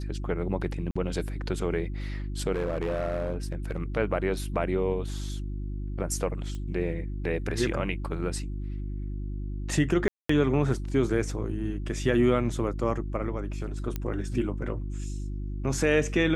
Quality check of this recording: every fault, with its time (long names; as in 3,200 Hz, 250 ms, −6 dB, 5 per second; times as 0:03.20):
mains hum 50 Hz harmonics 7 −33 dBFS
0:00.91–0:00.95: drop-out 45 ms
0:02.52–0:03.81: clipping −24.5 dBFS
0:06.55: click −26 dBFS
0:10.08–0:10.29: drop-out 214 ms
0:13.96: click −17 dBFS